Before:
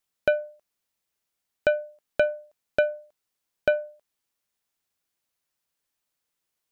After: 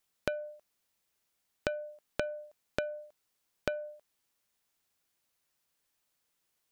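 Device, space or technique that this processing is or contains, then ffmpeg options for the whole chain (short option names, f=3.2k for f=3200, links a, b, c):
serial compression, leveller first: -af "acompressor=threshold=-24dB:ratio=2.5,acompressor=threshold=-33dB:ratio=6,volume=2.5dB"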